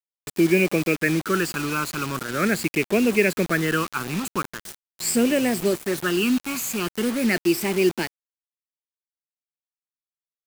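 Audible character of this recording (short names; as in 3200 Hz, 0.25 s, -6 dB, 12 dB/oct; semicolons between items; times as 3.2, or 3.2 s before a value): phasing stages 12, 0.42 Hz, lowest notch 580–1300 Hz; a quantiser's noise floor 6-bit, dither none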